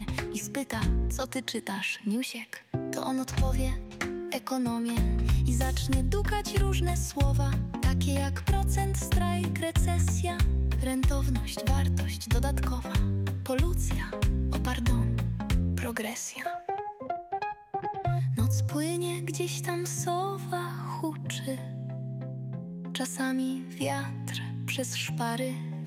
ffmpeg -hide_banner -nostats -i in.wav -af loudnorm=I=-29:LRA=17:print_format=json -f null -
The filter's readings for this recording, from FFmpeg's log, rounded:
"input_i" : "-30.6",
"input_tp" : "-15.5",
"input_lra" : "4.4",
"input_thresh" : "-40.6",